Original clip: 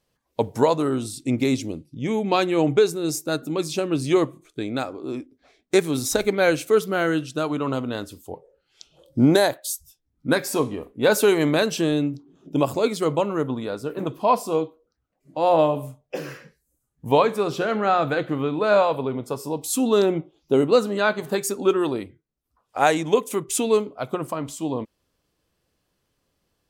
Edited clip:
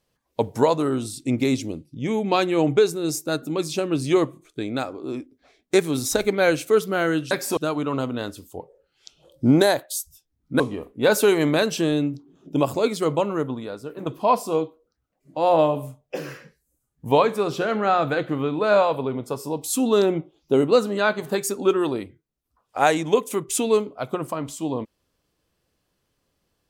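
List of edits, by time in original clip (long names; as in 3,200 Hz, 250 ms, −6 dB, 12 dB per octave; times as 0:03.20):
0:10.34–0:10.60: move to 0:07.31
0:13.34–0:14.06: fade out quadratic, to −6 dB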